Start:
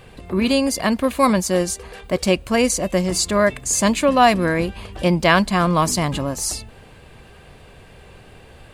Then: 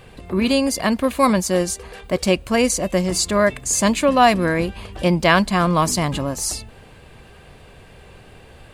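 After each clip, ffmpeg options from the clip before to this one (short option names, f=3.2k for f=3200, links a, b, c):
-af anull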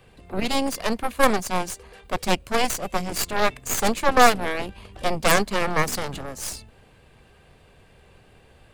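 -filter_complex "[0:a]aeval=exprs='0.841*(cos(1*acos(clip(val(0)/0.841,-1,1)))-cos(1*PI/2))+0.168*(cos(3*acos(clip(val(0)/0.841,-1,1)))-cos(3*PI/2))+0.376*(cos(6*acos(clip(val(0)/0.841,-1,1)))-cos(6*PI/2))+0.168*(cos(8*acos(clip(val(0)/0.841,-1,1)))-cos(8*PI/2))':c=same,acrossover=split=130|1400|5100[a][b][c][d];[c]asoftclip=type=tanh:threshold=-18.5dB[e];[a][b][e][d]amix=inputs=4:normalize=0,volume=-1dB"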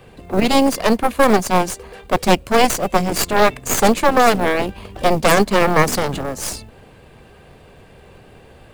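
-af "equalizer=f=360:w=0.31:g=5.5,acrusher=bits=7:mode=log:mix=0:aa=0.000001,alimiter=level_in=6.5dB:limit=-1dB:release=50:level=0:latency=1,volume=-1dB"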